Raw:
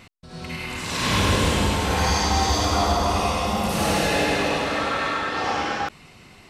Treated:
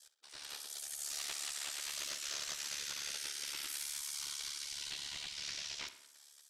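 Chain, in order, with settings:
gate on every frequency bin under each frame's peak −20 dB weak
high-shelf EQ 3,500 Hz +11 dB
downward compressor 6 to 1, threshold −30 dBFS, peak gain reduction 10 dB
ring modulation 36 Hz
on a send: tape delay 62 ms, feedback 63%, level −11 dB, low-pass 4,100 Hz
on the sum: highs frequency-modulated by the lows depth 0.16 ms
level −5.5 dB

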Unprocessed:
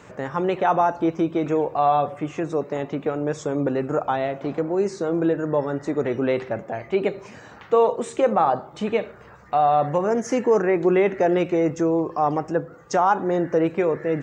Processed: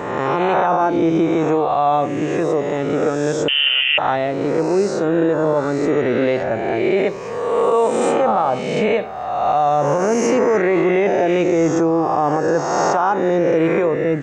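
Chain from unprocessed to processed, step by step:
peak hold with a rise ahead of every peak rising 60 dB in 1.56 s
brickwall limiter −11.5 dBFS, peak gain reduction 7 dB
0:03.48–0:03.98: voice inversion scrambler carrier 3,300 Hz
level +3.5 dB

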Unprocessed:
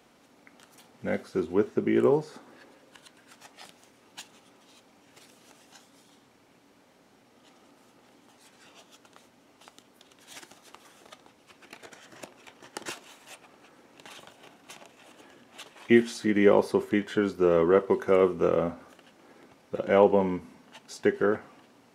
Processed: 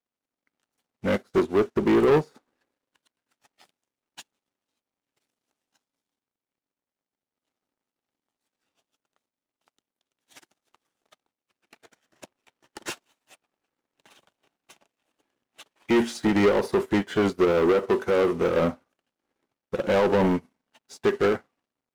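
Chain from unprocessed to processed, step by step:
brickwall limiter −17 dBFS, peak gain reduction 10 dB
leveller curve on the samples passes 3
expander for the loud parts 2.5 to 1, over −44 dBFS
level +4 dB

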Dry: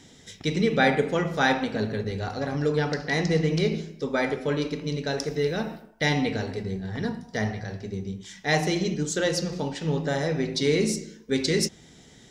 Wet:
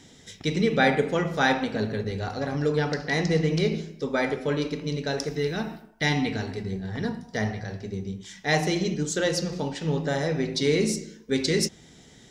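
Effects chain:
0:05.28–0:06.73: parametric band 530 Hz −12.5 dB 0.24 octaves

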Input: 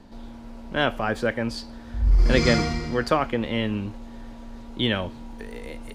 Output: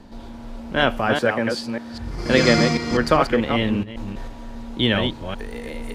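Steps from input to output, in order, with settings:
delay that plays each chunk backwards 198 ms, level −5 dB
0:01.15–0:02.91: high-pass filter 140 Hz 12 dB per octave
0:03.83–0:04.28: compressor whose output falls as the input rises −35 dBFS, ratio −1
level +4 dB

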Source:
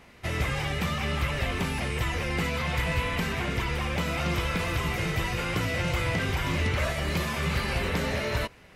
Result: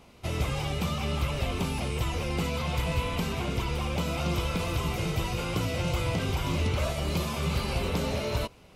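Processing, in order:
parametric band 1,800 Hz −14 dB 0.52 octaves

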